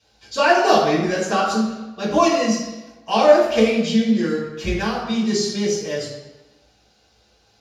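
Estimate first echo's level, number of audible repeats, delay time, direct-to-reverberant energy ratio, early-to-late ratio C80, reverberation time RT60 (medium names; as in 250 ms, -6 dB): no echo, no echo, no echo, -8.5 dB, 5.0 dB, 1.1 s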